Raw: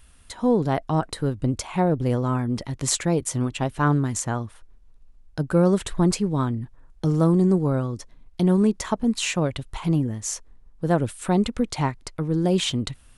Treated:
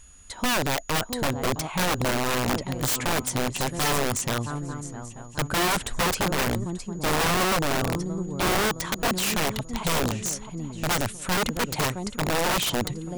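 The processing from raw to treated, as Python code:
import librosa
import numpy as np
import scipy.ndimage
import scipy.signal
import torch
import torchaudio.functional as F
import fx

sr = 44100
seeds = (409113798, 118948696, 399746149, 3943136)

y = fx.echo_swing(x, sr, ms=887, ratio=3, feedback_pct=35, wet_db=-13.0)
y = (np.mod(10.0 ** (18.5 / 20.0) * y + 1.0, 2.0) - 1.0) / 10.0 ** (18.5 / 20.0)
y = y + 10.0 ** (-52.0 / 20.0) * np.sin(2.0 * np.pi * 6800.0 * np.arange(len(y)) / sr)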